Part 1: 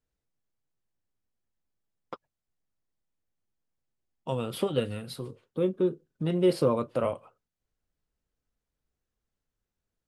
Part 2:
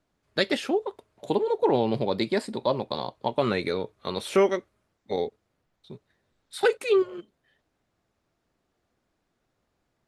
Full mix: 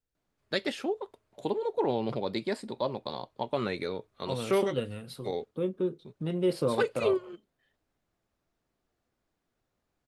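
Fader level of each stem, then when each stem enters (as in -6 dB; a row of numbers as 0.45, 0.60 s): -4.0, -6.0 dB; 0.00, 0.15 s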